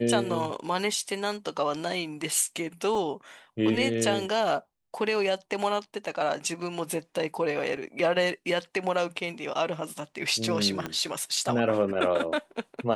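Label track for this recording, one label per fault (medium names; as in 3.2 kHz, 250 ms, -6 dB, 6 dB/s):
2.950000	2.950000	dropout 2.9 ms
7.770000	7.770000	dropout 3 ms
10.860000	10.860000	pop -17 dBFS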